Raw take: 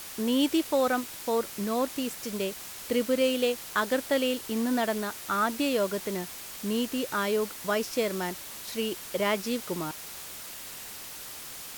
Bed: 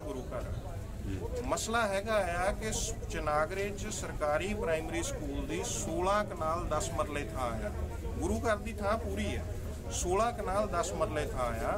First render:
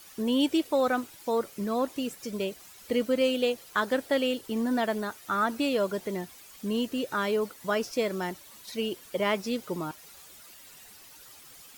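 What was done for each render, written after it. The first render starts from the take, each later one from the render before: noise reduction 12 dB, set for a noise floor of -42 dBFS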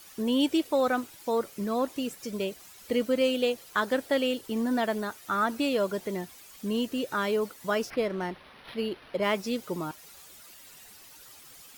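7.90–9.24 s: decimation joined by straight lines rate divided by 6×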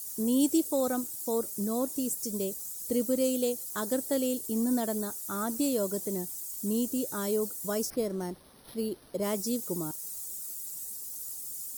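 FFT filter 330 Hz 0 dB, 2.6 kHz -16 dB, 7.9 kHz +13 dB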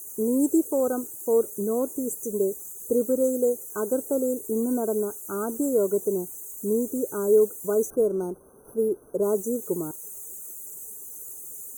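FFT band-reject 1.6–5.9 kHz; peaking EQ 420 Hz +12.5 dB 0.56 oct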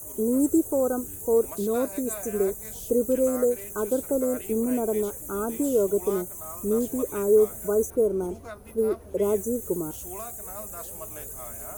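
add bed -10 dB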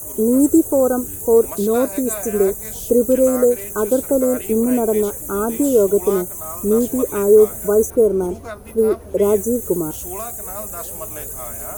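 trim +8.5 dB; peak limiter -3 dBFS, peak gain reduction 1 dB

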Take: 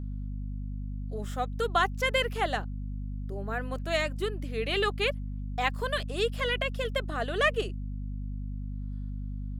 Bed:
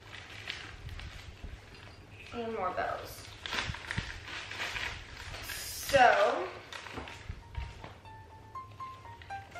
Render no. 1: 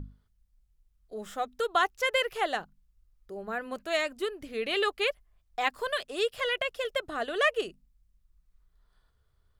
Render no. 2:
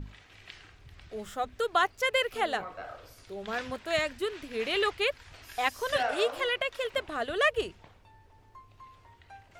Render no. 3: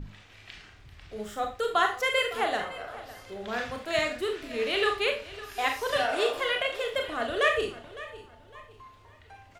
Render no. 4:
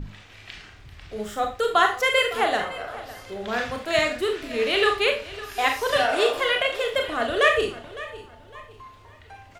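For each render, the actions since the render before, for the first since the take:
hum notches 50/100/150/200/250 Hz
add bed -8 dB
feedback delay 558 ms, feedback 32%, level -17 dB; Schroeder reverb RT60 0.34 s, combs from 26 ms, DRR 3 dB
trim +5.5 dB

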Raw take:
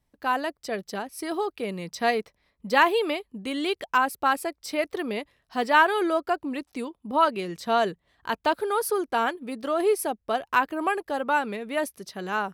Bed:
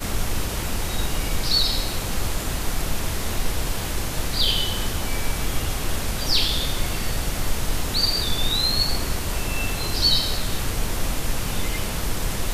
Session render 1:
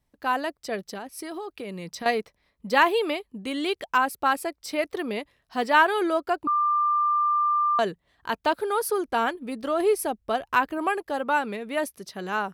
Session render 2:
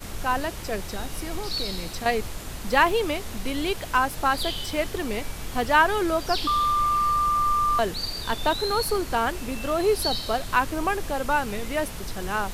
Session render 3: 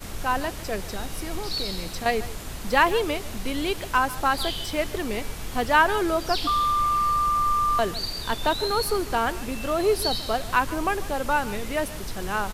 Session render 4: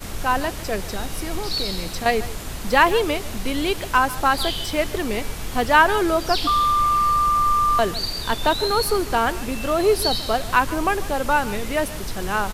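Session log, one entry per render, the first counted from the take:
0.83–2.06 s: compression, threshold -31 dBFS; 6.47–7.79 s: bleep 1.19 kHz -19.5 dBFS; 9.05–10.78 s: bass shelf 92 Hz +10.5 dB
add bed -9.5 dB
delay 146 ms -17.5 dB
trim +4 dB; peak limiter -3 dBFS, peak gain reduction 1 dB

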